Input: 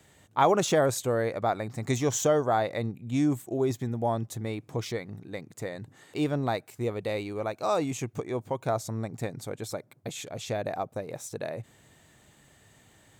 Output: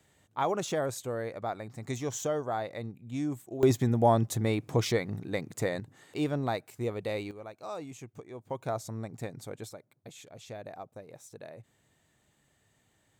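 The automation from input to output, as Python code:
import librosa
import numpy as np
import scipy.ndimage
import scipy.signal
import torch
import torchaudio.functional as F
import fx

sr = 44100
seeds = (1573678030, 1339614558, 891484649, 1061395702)

y = fx.gain(x, sr, db=fx.steps((0.0, -7.5), (3.63, 5.0), (5.8, -2.5), (7.31, -12.5), (8.5, -5.0), (9.69, -11.5)))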